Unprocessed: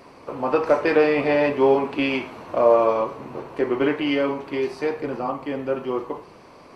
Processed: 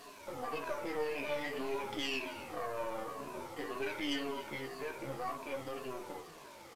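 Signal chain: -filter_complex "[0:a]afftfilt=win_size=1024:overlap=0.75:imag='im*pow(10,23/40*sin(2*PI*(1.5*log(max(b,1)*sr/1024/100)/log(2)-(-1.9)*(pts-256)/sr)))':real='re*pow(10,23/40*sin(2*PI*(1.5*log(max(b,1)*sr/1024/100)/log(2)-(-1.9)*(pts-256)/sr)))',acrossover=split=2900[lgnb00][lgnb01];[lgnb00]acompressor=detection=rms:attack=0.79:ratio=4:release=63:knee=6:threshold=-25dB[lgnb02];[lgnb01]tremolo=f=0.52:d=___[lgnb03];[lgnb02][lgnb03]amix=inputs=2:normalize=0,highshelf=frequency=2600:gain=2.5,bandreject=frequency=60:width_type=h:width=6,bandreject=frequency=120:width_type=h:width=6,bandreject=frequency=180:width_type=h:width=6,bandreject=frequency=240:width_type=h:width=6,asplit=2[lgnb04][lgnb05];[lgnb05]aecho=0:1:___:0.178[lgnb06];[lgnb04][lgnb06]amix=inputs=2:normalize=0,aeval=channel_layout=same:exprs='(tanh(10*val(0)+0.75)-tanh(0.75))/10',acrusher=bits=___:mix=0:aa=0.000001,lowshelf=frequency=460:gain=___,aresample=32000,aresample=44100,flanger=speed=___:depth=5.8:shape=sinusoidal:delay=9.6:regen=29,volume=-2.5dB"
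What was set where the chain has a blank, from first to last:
0.79, 265, 7, -4.5, 0.51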